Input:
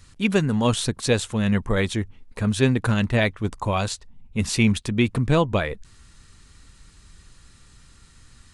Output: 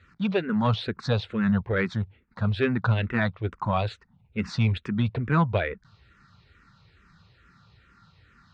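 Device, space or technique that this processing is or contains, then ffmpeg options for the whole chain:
barber-pole phaser into a guitar amplifier: -filter_complex "[0:a]asplit=2[a][b];[b]afreqshift=-2.3[c];[a][c]amix=inputs=2:normalize=1,asoftclip=type=tanh:threshold=-12.5dB,highpass=82,equalizer=f=110:t=q:w=4:g=3,equalizer=f=170:t=q:w=4:g=4,equalizer=f=280:t=q:w=4:g=-6,equalizer=f=1.4k:t=q:w=4:g=7,equalizer=f=3.1k:t=q:w=4:g=-5,lowpass=f=4k:w=0.5412,lowpass=f=4k:w=1.3066"

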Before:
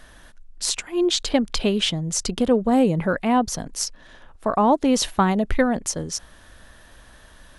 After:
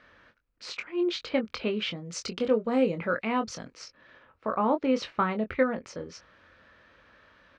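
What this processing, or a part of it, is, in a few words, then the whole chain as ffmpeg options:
guitar cabinet: -filter_complex "[0:a]highpass=99,equalizer=f=160:t=q:w=4:g=-4,equalizer=f=510:t=q:w=4:g=6,equalizer=f=730:t=q:w=4:g=-5,equalizer=f=1.3k:t=q:w=4:g=7,equalizer=f=2.3k:t=q:w=4:g=7,equalizer=f=3.5k:t=q:w=4:g=-5,lowpass=f=4.4k:w=0.5412,lowpass=f=4.4k:w=1.3066,asettb=1/sr,asplit=3[a][b][c];[a]atrim=end=2.054[d];[b]atrim=start=2.05:end=3.74,asetpts=PTS-STARTPTS,afade=t=in:d=0.004:c=qsin,afade=t=out:st=1.686:d=0.004:c=qsin,aemphasis=mode=production:type=75fm[e];[c]atrim=start=3.736[f];[d][e]acrossfade=d=0.004:c1=hsin:c2=qsin[g];[g][f]acrossfade=d=0.004:c1=qsin:c2=hsin,asplit=2[h][i];[i]adelay=23,volume=-7.5dB[j];[h][j]amix=inputs=2:normalize=0,volume=-9dB"

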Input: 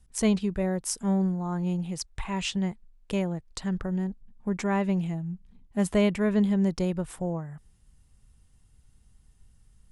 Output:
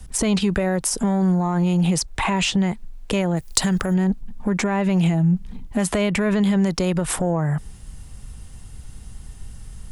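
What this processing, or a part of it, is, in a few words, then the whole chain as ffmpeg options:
mastering chain: -filter_complex "[0:a]equalizer=f=680:t=o:w=0.77:g=2,acrossover=split=140|870[a][b][c];[a]acompressor=threshold=-48dB:ratio=4[d];[b]acompressor=threshold=-32dB:ratio=4[e];[c]acompressor=threshold=-37dB:ratio=4[f];[d][e][f]amix=inputs=3:normalize=0,acompressor=threshold=-33dB:ratio=2,asoftclip=type=tanh:threshold=-22.5dB,alimiter=level_in=32.5dB:limit=-1dB:release=50:level=0:latency=1,asplit=3[g][h][i];[g]afade=t=out:st=3.36:d=0.02[j];[h]aemphasis=mode=production:type=75fm,afade=t=in:st=3.36:d=0.02,afade=t=out:st=3.93:d=0.02[k];[i]afade=t=in:st=3.93:d=0.02[l];[j][k][l]amix=inputs=3:normalize=0,volume=-11.5dB"

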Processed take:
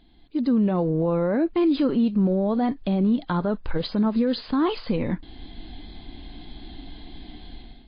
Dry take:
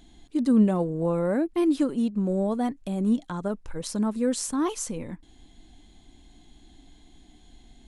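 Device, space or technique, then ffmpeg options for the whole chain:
low-bitrate web radio: -af "dynaudnorm=f=200:g=5:m=16.5dB,alimiter=limit=-11.5dB:level=0:latency=1:release=67,volume=-3dB" -ar 11025 -c:a libmp3lame -b:a 24k

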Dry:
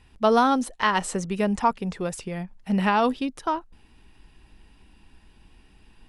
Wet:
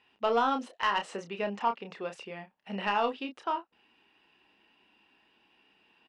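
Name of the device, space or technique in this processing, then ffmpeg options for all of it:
intercom: -filter_complex "[0:a]highpass=370,lowpass=3.7k,equalizer=f=2.8k:t=o:w=0.23:g=7,asoftclip=type=tanh:threshold=-12dB,asplit=2[a][b];[b]adelay=30,volume=-7dB[c];[a][c]amix=inputs=2:normalize=0,asettb=1/sr,asplit=3[d][e][f];[d]atrim=end=1.244[g];[e]atrim=start=1.24:end=1.88,asetpts=PTS-STARTPTS,afade=t=in:d=0.004:c=qsin,afade=t=out:st=0.636:d=0.004:c=qsin,lowpass=7.6k[h];[f]atrim=start=1.876[i];[g][h]acrossfade=d=0.004:c1=hsin:c2=qsin[j];[j][i]acrossfade=d=0.004:c1=qsin:c2=hsin,volume=-5.5dB"

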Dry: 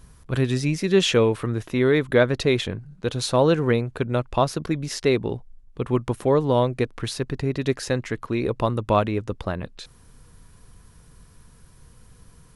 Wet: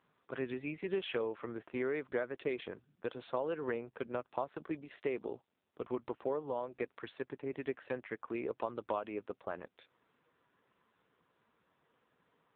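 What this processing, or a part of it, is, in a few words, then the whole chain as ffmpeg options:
voicemail: -af "highpass=360,lowpass=2.8k,acompressor=threshold=-22dB:ratio=8,volume=-8.5dB" -ar 8000 -c:a libopencore_amrnb -b:a 5900

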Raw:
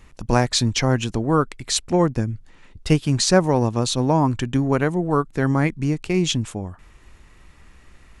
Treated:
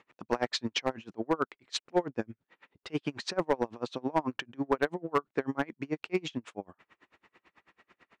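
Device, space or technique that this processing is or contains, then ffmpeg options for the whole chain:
helicopter radio: -af "highpass=340,lowpass=3k,aeval=exprs='val(0)*pow(10,-33*(0.5-0.5*cos(2*PI*9.1*n/s))/20)':c=same,asoftclip=type=hard:threshold=-17dB"

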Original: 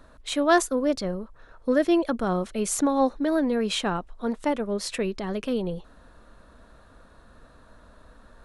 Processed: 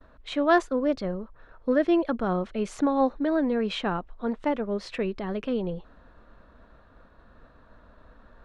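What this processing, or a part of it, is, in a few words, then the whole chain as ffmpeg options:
hearing-loss simulation: -af "lowpass=3.1k,agate=range=-33dB:threshold=-50dB:ratio=3:detection=peak,volume=-1dB"

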